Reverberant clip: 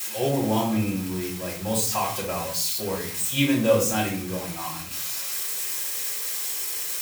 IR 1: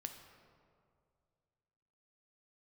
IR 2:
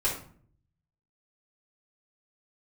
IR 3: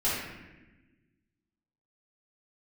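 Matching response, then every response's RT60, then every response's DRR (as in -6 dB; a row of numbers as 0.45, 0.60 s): 2; 2.3, 0.50, 1.1 s; 5.5, -6.0, -11.0 dB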